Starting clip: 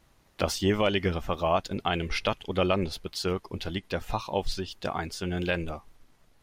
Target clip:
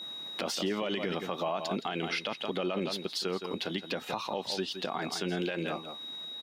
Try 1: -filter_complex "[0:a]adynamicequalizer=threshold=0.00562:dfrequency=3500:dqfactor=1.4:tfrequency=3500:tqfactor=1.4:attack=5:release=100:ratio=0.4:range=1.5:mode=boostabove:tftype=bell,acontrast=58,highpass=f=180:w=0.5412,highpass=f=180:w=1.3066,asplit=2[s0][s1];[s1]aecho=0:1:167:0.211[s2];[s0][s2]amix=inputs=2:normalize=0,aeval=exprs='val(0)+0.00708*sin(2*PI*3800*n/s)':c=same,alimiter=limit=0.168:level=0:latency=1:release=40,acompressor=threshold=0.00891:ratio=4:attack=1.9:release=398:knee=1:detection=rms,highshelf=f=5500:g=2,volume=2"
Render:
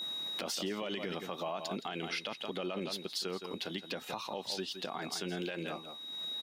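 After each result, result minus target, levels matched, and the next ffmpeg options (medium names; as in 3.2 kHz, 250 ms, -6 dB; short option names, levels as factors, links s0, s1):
compression: peak gain reduction +5.5 dB; 8 kHz band +3.5 dB
-filter_complex "[0:a]adynamicequalizer=threshold=0.00562:dfrequency=3500:dqfactor=1.4:tfrequency=3500:tqfactor=1.4:attack=5:release=100:ratio=0.4:range=1.5:mode=boostabove:tftype=bell,acontrast=58,highpass=f=180:w=0.5412,highpass=f=180:w=1.3066,asplit=2[s0][s1];[s1]aecho=0:1:167:0.211[s2];[s0][s2]amix=inputs=2:normalize=0,aeval=exprs='val(0)+0.00708*sin(2*PI*3800*n/s)':c=same,alimiter=limit=0.168:level=0:latency=1:release=40,acompressor=threshold=0.0211:ratio=4:attack=1.9:release=398:knee=1:detection=rms,highshelf=f=5500:g=2,volume=2"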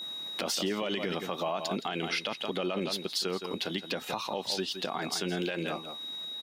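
8 kHz band +3.5 dB
-filter_complex "[0:a]adynamicequalizer=threshold=0.00562:dfrequency=3500:dqfactor=1.4:tfrequency=3500:tqfactor=1.4:attack=5:release=100:ratio=0.4:range=1.5:mode=boostabove:tftype=bell,acontrast=58,highpass=f=180:w=0.5412,highpass=f=180:w=1.3066,asplit=2[s0][s1];[s1]aecho=0:1:167:0.211[s2];[s0][s2]amix=inputs=2:normalize=0,aeval=exprs='val(0)+0.00708*sin(2*PI*3800*n/s)':c=same,alimiter=limit=0.168:level=0:latency=1:release=40,acompressor=threshold=0.0211:ratio=4:attack=1.9:release=398:knee=1:detection=rms,highshelf=f=5500:g=-5.5,volume=2"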